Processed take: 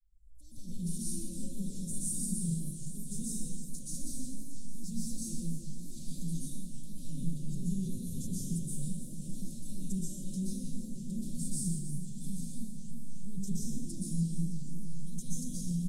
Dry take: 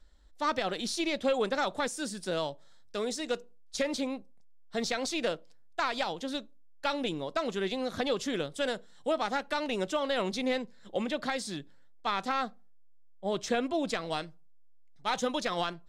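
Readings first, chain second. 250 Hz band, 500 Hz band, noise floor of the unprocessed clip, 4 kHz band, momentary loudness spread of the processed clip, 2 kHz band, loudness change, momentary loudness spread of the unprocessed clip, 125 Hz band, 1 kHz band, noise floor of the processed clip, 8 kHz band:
−1.0 dB, −25.5 dB, −52 dBFS, −17.0 dB, 11 LU, below −40 dB, −6.0 dB, 7 LU, +11.0 dB, below −40 dB, −44 dBFS, +4.0 dB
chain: fade in at the beginning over 0.83 s
high-shelf EQ 8,800 Hz −11.5 dB
comb filter 5.4 ms, depth 57%
in parallel at −3 dB: compressor whose output falls as the input rises −36 dBFS
on the sum: Chebyshev band-stop filter 130–9,700 Hz, order 3
brickwall limiter −39 dBFS, peak gain reduction 9 dB
bass and treble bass −1 dB, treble +4 dB
on a send: feedback delay with all-pass diffusion 863 ms, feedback 44%, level −13.5 dB
on the sum: dense smooth reverb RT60 1.6 s, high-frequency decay 0.65×, pre-delay 110 ms, DRR −8.5 dB
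feedback echo with a swinging delay time 315 ms, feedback 65%, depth 213 cents, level −12.5 dB
level +3.5 dB

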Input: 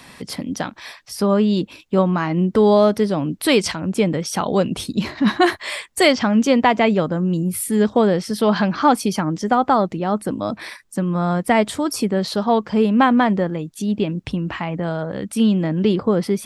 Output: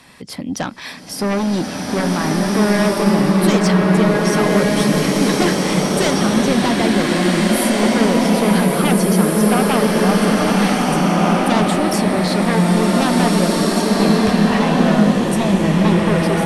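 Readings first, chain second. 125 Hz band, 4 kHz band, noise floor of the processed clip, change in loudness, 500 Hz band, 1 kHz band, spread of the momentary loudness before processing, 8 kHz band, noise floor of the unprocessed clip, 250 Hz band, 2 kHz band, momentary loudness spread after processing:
+6.0 dB, +4.5 dB, −29 dBFS, +3.5 dB, +1.5 dB, +1.5 dB, 11 LU, +7.0 dB, −48 dBFS, +4.5 dB, +4.5 dB, 5 LU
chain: automatic gain control
sine wavefolder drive 8 dB, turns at −0.5 dBFS
slow-attack reverb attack 1,820 ms, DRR −5 dB
level −15 dB

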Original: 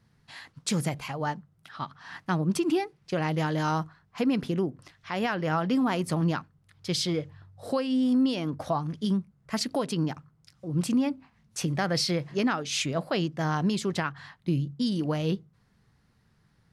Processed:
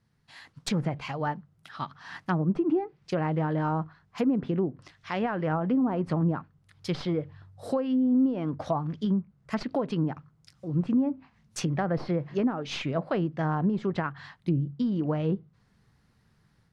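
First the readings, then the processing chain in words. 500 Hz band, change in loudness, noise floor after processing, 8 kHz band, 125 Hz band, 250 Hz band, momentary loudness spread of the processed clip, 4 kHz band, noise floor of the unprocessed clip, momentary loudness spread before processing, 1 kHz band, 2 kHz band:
+0.5 dB, −0.5 dB, −67 dBFS, −10.0 dB, +0.5 dB, +0.5 dB, 13 LU, −8.5 dB, −66 dBFS, 13 LU, −1.0 dB, −4.0 dB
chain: stylus tracing distortion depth 0.029 ms
treble cut that deepens with the level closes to 710 Hz, closed at −21.5 dBFS
automatic gain control gain up to 7 dB
level −6.5 dB

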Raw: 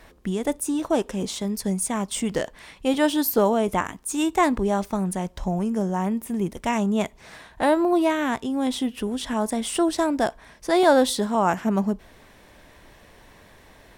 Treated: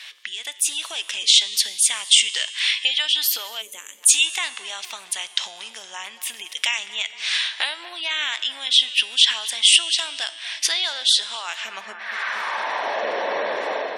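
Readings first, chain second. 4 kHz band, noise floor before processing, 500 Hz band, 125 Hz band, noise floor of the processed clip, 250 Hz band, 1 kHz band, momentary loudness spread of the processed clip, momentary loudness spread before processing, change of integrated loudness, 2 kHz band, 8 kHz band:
+18.0 dB, −52 dBFS, −9.5 dB, below −30 dB, −43 dBFS, below −25 dB, −5.0 dB, 16 LU, 8 LU, +4.0 dB, +7.5 dB, +11.5 dB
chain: high-pass filter 54 Hz 24 dB per octave
high-shelf EQ 7,400 Hz −11.5 dB
downward compressor 12 to 1, threshold −34 dBFS, peak gain reduction 21.5 dB
dynamic equaliser 160 Hz, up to −4 dB, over −53 dBFS, Q 1.6
automatic gain control gain up to 7.5 dB
tuned comb filter 110 Hz, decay 1.9 s, mix 60%
tape delay 234 ms, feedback 79%, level −16 dB, low-pass 2,700 Hz
gain on a spectral selection 0:03.62–0:04.03, 600–6,000 Hz −15 dB
high-pass filter sweep 3,100 Hz → 550 Hz, 0:11.56–0:13.11
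gate on every frequency bin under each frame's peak −30 dB strong
boost into a limiter +26 dB
level −1 dB

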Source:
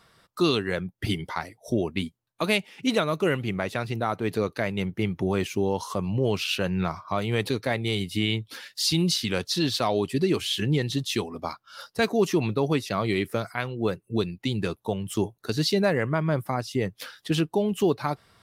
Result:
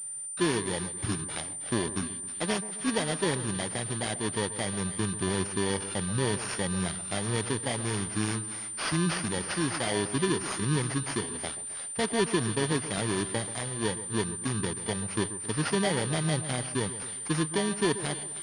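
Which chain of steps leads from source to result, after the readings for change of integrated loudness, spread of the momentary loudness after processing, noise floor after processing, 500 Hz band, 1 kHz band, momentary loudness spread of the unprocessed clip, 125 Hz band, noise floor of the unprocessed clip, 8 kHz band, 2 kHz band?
−3.0 dB, 5 LU, −38 dBFS, −5.5 dB, −3.5 dB, 7 LU, −3.5 dB, −69 dBFS, +9.0 dB, −2.5 dB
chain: samples in bit-reversed order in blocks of 32 samples
echo with a time of its own for lows and highs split 1,900 Hz, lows 133 ms, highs 313 ms, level −13 dB
switching amplifier with a slow clock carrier 9,100 Hz
level −3.5 dB

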